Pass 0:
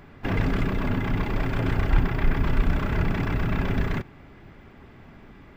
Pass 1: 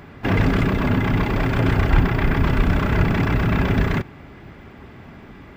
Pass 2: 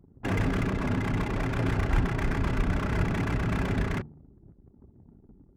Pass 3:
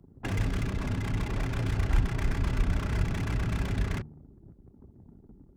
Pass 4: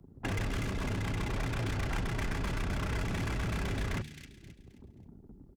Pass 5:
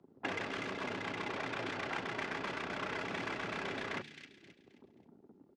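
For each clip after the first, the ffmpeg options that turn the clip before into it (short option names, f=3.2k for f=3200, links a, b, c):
-af "highpass=41,volume=7dB"
-af "adynamicsmooth=sensitivity=6:basefreq=960,bandreject=f=75.43:t=h:w=4,bandreject=f=150.86:t=h:w=4,bandreject=f=226.29:t=h:w=4,anlmdn=2.51,volume=-8.5dB"
-filter_complex "[0:a]acrossover=split=120|3000[a][b][c];[b]acompressor=threshold=-36dB:ratio=6[d];[a][d][c]amix=inputs=3:normalize=0,volume=1.5dB"
-filter_complex "[0:a]acrossover=split=410|2000[a][b][c];[a]volume=31.5dB,asoftclip=hard,volume=-31.5dB[d];[c]aecho=1:1:265|530|795|1060:0.531|0.186|0.065|0.0228[e];[d][b][e]amix=inputs=3:normalize=0"
-af "highpass=340,lowpass=4.2k,volume=1dB"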